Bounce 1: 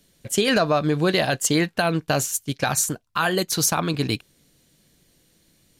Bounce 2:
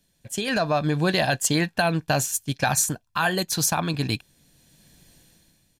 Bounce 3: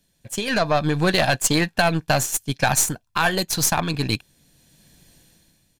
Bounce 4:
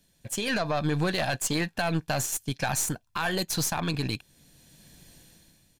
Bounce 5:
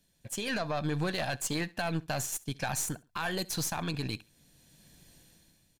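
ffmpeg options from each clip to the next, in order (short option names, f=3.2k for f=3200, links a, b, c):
-af "aecho=1:1:1.2:0.37,dynaudnorm=f=140:g=9:m=14dB,volume=-8dB"
-af "aeval=exprs='0.376*(cos(1*acos(clip(val(0)/0.376,-1,1)))-cos(1*PI/2))+0.0299*(cos(6*acos(clip(val(0)/0.376,-1,1)))-cos(6*PI/2))+0.0106*(cos(7*acos(clip(val(0)/0.376,-1,1)))-cos(7*PI/2))':c=same,volume=3dB"
-filter_complex "[0:a]asplit=2[a][b];[b]acompressor=threshold=-29dB:ratio=6,volume=1dB[c];[a][c]amix=inputs=2:normalize=0,alimiter=limit=-11dB:level=0:latency=1:release=33,volume=-6dB"
-af "aecho=1:1:68|136:0.075|0.0202,volume=-5dB"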